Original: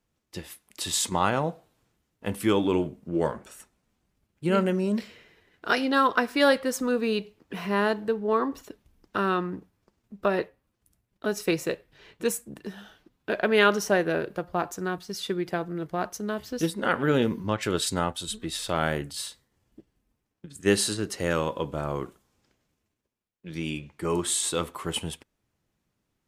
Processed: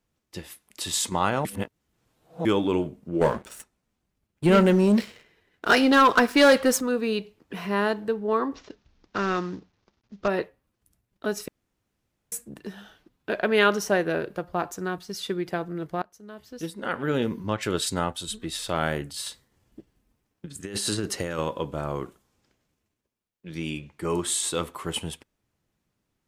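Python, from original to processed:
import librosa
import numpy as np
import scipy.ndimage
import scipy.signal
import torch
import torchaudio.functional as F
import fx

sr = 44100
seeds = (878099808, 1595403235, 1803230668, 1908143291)

y = fx.leveller(x, sr, passes=2, at=(3.21, 6.81))
y = fx.cvsd(y, sr, bps=32000, at=(8.54, 10.28))
y = fx.over_compress(y, sr, threshold_db=-30.0, ratio=-1.0, at=(19.26, 21.39))
y = fx.edit(y, sr, fx.reverse_span(start_s=1.45, length_s=1.0),
    fx.room_tone_fill(start_s=11.48, length_s=0.84),
    fx.fade_in_from(start_s=16.02, length_s=1.56, floor_db=-23.0), tone=tone)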